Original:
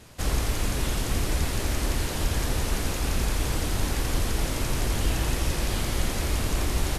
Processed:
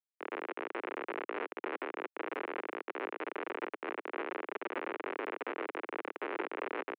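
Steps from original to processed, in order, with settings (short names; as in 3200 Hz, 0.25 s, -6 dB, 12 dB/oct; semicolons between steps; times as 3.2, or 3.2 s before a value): on a send: echo 0.34 s -10 dB; on the sum: AGC gain up to 8.5 dB; reverb removal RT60 1.4 s; air absorption 320 m; echo 0.213 s -18 dB; Schmitt trigger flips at -19.5 dBFS; mistuned SSB +99 Hz 280–2500 Hz; bell 660 Hz -7 dB 0.97 oct; gain -3 dB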